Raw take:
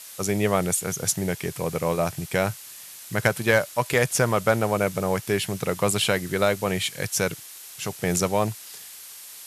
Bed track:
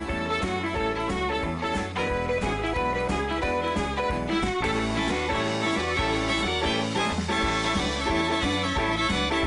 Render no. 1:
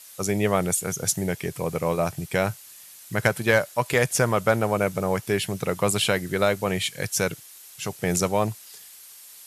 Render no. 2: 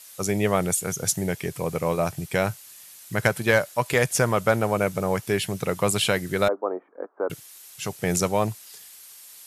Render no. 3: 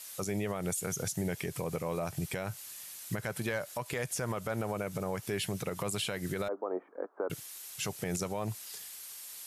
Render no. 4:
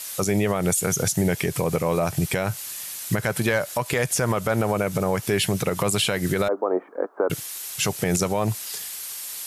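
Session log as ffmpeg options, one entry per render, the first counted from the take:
ffmpeg -i in.wav -af "afftdn=noise_reduction=6:noise_floor=-43" out.wav
ffmpeg -i in.wav -filter_complex "[0:a]asettb=1/sr,asplit=3[link_01][link_02][link_03];[link_01]atrim=end=6.484[link_04];[link_02]atrim=start=6.48:end=7.3,asetpts=PTS-STARTPTS,afade=type=in:duration=0.004:curve=qsin,afade=type=out:start_time=0.816:duration=0.004:curve=qsin,asuperpass=centerf=590:order=12:qfactor=0.57[link_05];[link_03]atrim=start=7.296[link_06];[link_04][link_05]acrossfade=duration=0.004:curve1=hsin:curve2=qsin[link_07];[link_07][link_06]acrossfade=duration=0.004:curve1=qsin:curve2=hsin" out.wav
ffmpeg -i in.wav -af "acompressor=threshold=-24dB:ratio=2.5,alimiter=level_in=0.5dB:limit=-24dB:level=0:latency=1:release=128,volume=-0.5dB" out.wav
ffmpeg -i in.wav -af "volume=12dB" out.wav

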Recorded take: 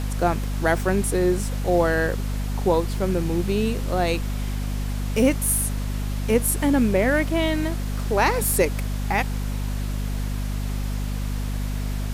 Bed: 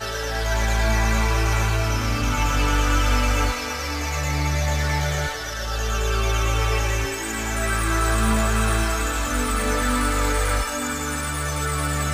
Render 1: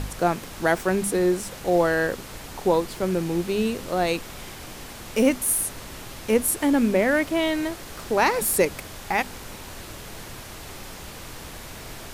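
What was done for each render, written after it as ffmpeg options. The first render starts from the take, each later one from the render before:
ffmpeg -i in.wav -af "bandreject=frequency=50:width_type=h:width=4,bandreject=frequency=100:width_type=h:width=4,bandreject=frequency=150:width_type=h:width=4,bandreject=frequency=200:width_type=h:width=4,bandreject=frequency=250:width_type=h:width=4" out.wav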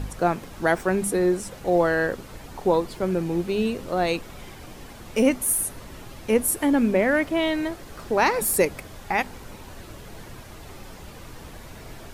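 ffmpeg -i in.wav -af "afftdn=noise_reduction=8:noise_floor=-40" out.wav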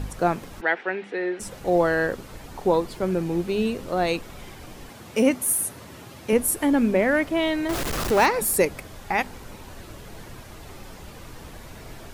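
ffmpeg -i in.wav -filter_complex "[0:a]asplit=3[link_01][link_02][link_03];[link_01]afade=type=out:start_time=0.6:duration=0.02[link_04];[link_02]highpass=480,equalizer=frequency=630:width_type=q:width=4:gain=-6,equalizer=frequency=1100:width_type=q:width=4:gain=-9,equalizer=frequency=1900:width_type=q:width=4:gain=6,equalizer=frequency=2700:width_type=q:width=4:gain=3,lowpass=frequency=3500:width=0.5412,lowpass=frequency=3500:width=1.3066,afade=type=in:start_time=0.6:duration=0.02,afade=type=out:start_time=1.39:duration=0.02[link_05];[link_03]afade=type=in:start_time=1.39:duration=0.02[link_06];[link_04][link_05][link_06]amix=inputs=3:normalize=0,asettb=1/sr,asplit=3[link_07][link_08][link_09];[link_07]atrim=end=4.894[link_10];[link_08]atrim=start=4.89:end=6.33,asetpts=PTS-STARTPTS,afade=type=in:duration=0.004:curve=qsin,afade=type=out:start_time=1.436:duration=0.004:curve=qsin,highpass=frequency=81:width=0.5412,highpass=frequency=81:width=1.3066[link_11];[link_09]atrim=start=6.326[link_12];[link_10][link_11]acrossfade=duration=0.004:curve1=hsin:curve2=qsin[link_13];[link_13][link_12]acrossfade=duration=0.004:curve1=qsin:curve2=hsin,asettb=1/sr,asplit=3[link_14][link_15][link_16];[link_14]atrim=end=7.694[link_17];[link_15]atrim=start=7.69:end=8.26,asetpts=PTS-STARTPTS,afade=type=in:duration=0.004:curve=qsin,afade=type=out:start_time=0.566:duration=0.004:curve=qsin,aeval=exprs='val(0)+0.5*0.075*sgn(val(0))':channel_layout=same[link_18];[link_16]atrim=start=8.256[link_19];[link_17][link_18]acrossfade=duration=0.004:curve1=hsin:curve2=qsin[link_20];[link_20][link_19]acrossfade=duration=0.004:curve1=qsin:curve2=hsin" out.wav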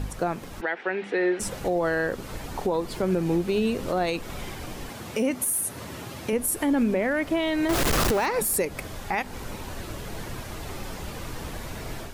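ffmpeg -i in.wav -af "dynaudnorm=framelen=480:gausssize=3:maxgain=6dB,alimiter=limit=-16dB:level=0:latency=1:release=197" out.wav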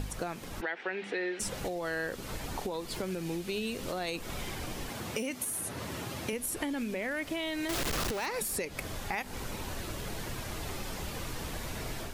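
ffmpeg -i in.wav -filter_complex "[0:a]acrossover=split=2100|6300[link_01][link_02][link_03];[link_01]acompressor=threshold=-35dB:ratio=4[link_04];[link_02]acompressor=threshold=-37dB:ratio=4[link_05];[link_03]acompressor=threshold=-38dB:ratio=4[link_06];[link_04][link_05][link_06]amix=inputs=3:normalize=0" out.wav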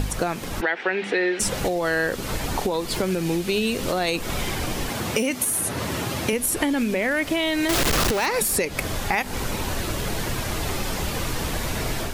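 ffmpeg -i in.wav -af "volume=11.5dB" out.wav

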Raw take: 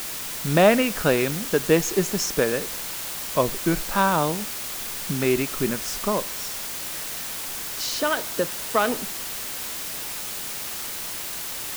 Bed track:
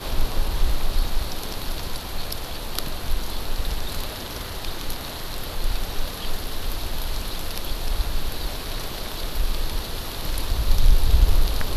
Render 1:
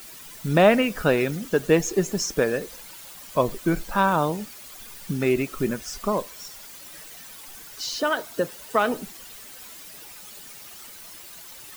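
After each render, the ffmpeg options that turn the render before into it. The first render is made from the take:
ffmpeg -i in.wav -af "afftdn=noise_reduction=13:noise_floor=-32" out.wav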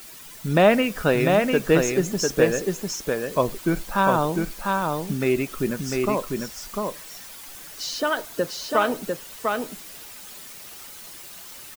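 ffmpeg -i in.wav -af "aecho=1:1:699:0.668" out.wav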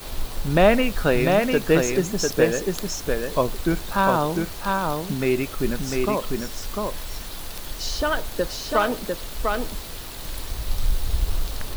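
ffmpeg -i in.wav -i bed.wav -filter_complex "[1:a]volume=-6.5dB[link_01];[0:a][link_01]amix=inputs=2:normalize=0" out.wav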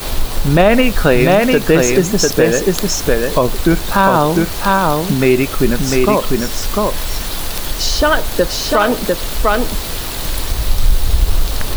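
ffmpeg -i in.wav -filter_complex "[0:a]asplit=2[link_01][link_02];[link_02]acompressor=threshold=-28dB:ratio=6,volume=-2.5dB[link_03];[link_01][link_03]amix=inputs=2:normalize=0,alimiter=level_in=8.5dB:limit=-1dB:release=50:level=0:latency=1" out.wav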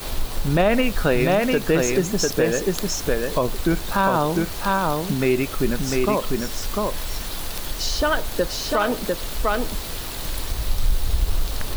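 ffmpeg -i in.wav -af "volume=-8dB" out.wav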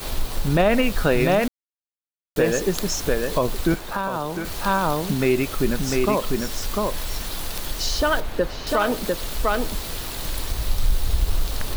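ffmpeg -i in.wav -filter_complex "[0:a]asettb=1/sr,asplit=3[link_01][link_02][link_03];[link_01]atrim=end=3.744[link_04];[link_02]atrim=start=3.74:end=4.45,asetpts=PTS-STARTPTS,afade=type=in:duration=0.004:curve=qsin,afade=type=out:start_time=0.706:duration=0.004:curve=qsin,acrossover=split=290|590|2400[link_05][link_06][link_07][link_08];[link_05]acompressor=threshold=-35dB:ratio=3[link_09];[link_06]acompressor=threshold=-35dB:ratio=3[link_10];[link_07]acompressor=threshold=-27dB:ratio=3[link_11];[link_08]acompressor=threshold=-42dB:ratio=3[link_12];[link_09][link_10][link_11][link_12]amix=inputs=4:normalize=0[link_13];[link_03]atrim=start=4.446[link_14];[link_04][link_13]acrossfade=duration=0.004:curve1=hsin:curve2=qsin[link_15];[link_15][link_14]acrossfade=duration=0.004:curve1=qsin:curve2=hsin,asettb=1/sr,asplit=3[link_16][link_17][link_18];[link_16]atrim=end=8.204[link_19];[link_17]atrim=start=8.2:end=8.67,asetpts=PTS-STARTPTS,afade=type=in:duration=0.004:curve=qsin,afade=type=out:start_time=0.466:duration=0.004:curve=qsin,acrossover=split=3100[link_20][link_21];[link_21]acompressor=threshold=-45dB:ratio=4:attack=1:release=60[link_22];[link_20][link_22]amix=inputs=2:normalize=0[link_23];[link_18]atrim=start=8.666[link_24];[link_19][link_23]acrossfade=duration=0.004:curve1=hsin:curve2=qsin[link_25];[link_25][link_24]acrossfade=duration=0.004:curve1=qsin:curve2=hsin,asplit=3[link_26][link_27][link_28];[link_26]atrim=end=1.48,asetpts=PTS-STARTPTS,afade=type=out:start_time=1.476:duration=0.004:curve=hsin[link_29];[link_27]atrim=start=1.48:end=2.36,asetpts=PTS-STARTPTS,volume=0[link_30];[link_28]atrim=start=2.36,asetpts=PTS-STARTPTS,afade=type=in:duration=0.004:curve=hsin[link_31];[link_29][link_30][link_31]concat=n=3:v=0:a=1" out.wav

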